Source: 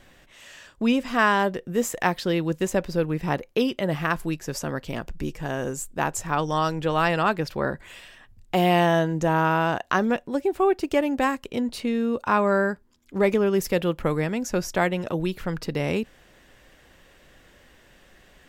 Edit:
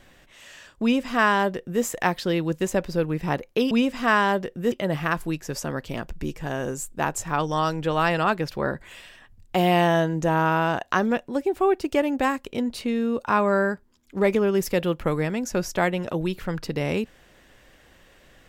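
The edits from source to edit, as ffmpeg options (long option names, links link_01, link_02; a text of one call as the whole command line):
ffmpeg -i in.wav -filter_complex "[0:a]asplit=3[link_01][link_02][link_03];[link_01]atrim=end=3.712[link_04];[link_02]atrim=start=0.818:end=1.832[link_05];[link_03]atrim=start=3.708[link_06];[link_04][link_05]acrossfade=duration=0.004:curve1=hsin:curve2=hsin[link_07];[link_07][link_06]acrossfade=duration=0.004:curve1=hsin:curve2=hsin" out.wav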